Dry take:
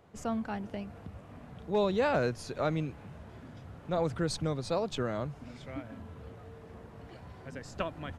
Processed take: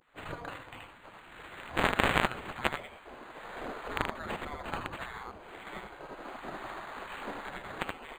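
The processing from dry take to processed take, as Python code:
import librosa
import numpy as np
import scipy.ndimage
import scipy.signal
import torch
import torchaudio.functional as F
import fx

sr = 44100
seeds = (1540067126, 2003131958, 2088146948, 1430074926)

y = fx.recorder_agc(x, sr, target_db=-24.5, rise_db_per_s=17.0, max_gain_db=30)
y = y + 10.0 ** (-21.0 / 20.0) * np.pad(y, (int(99 * sr / 1000.0), 0))[:len(y)]
y = (np.mod(10.0 ** (19.0 / 20.0) * y + 1.0, 2.0) - 1.0) / 10.0 ** (19.0 / 20.0)
y = fx.bass_treble(y, sr, bass_db=-9, treble_db=8, at=(0.44, 2.96))
y = y + 10.0 ** (-3.5 / 20.0) * np.pad(y, (int(78 * sr / 1000.0), 0))[:len(y)]
y = fx.vibrato(y, sr, rate_hz=0.63, depth_cents=92.0)
y = fx.high_shelf(y, sr, hz=6600.0, db=6.0)
y = fx.spec_gate(y, sr, threshold_db=-15, keep='weak')
y = np.interp(np.arange(len(y)), np.arange(len(y))[::8], y[::8])
y = F.gain(torch.from_numpy(y), 3.0).numpy()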